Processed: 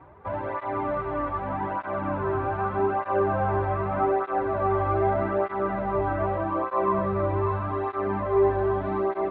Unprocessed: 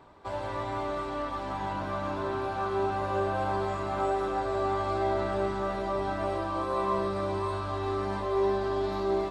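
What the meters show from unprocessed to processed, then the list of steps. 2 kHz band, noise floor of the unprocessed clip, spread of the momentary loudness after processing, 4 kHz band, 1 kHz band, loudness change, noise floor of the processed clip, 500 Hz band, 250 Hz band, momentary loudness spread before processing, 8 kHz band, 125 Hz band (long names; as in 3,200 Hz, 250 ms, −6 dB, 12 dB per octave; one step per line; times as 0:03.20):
+3.5 dB, −35 dBFS, 6 LU, below −10 dB, +4.0 dB, +4.5 dB, −35 dBFS, +4.0 dB, +4.5 dB, 5 LU, can't be measured, +6.5 dB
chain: low-pass filter 2,200 Hz 24 dB per octave
parametric band 74 Hz +4.5 dB 1.1 octaves
through-zero flanger with one copy inverted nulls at 0.82 Hz, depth 4.9 ms
level +7 dB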